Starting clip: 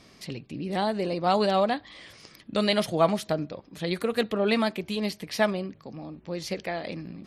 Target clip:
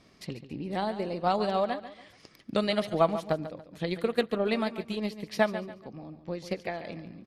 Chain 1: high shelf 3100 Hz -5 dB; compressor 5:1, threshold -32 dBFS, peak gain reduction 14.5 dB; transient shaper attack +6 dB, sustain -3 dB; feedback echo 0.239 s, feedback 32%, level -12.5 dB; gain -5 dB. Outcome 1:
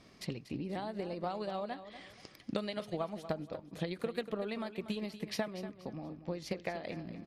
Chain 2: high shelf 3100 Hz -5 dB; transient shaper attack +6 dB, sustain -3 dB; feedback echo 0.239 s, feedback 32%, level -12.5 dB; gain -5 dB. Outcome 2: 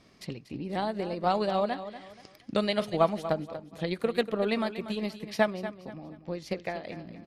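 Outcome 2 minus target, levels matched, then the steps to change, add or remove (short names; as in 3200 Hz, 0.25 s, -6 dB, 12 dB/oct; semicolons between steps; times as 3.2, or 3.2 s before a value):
echo 97 ms late
change: feedback echo 0.142 s, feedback 32%, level -12.5 dB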